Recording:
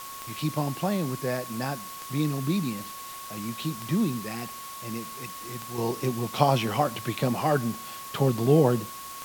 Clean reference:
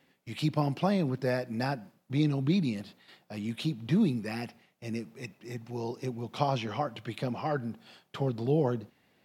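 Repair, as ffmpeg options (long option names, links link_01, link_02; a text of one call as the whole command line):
ffmpeg -i in.wav -af "adeclick=threshold=4,bandreject=frequency=1100:width=30,afwtdn=0.0079,asetnsamples=nb_out_samples=441:pad=0,asendcmd='5.78 volume volume -7dB',volume=0dB" out.wav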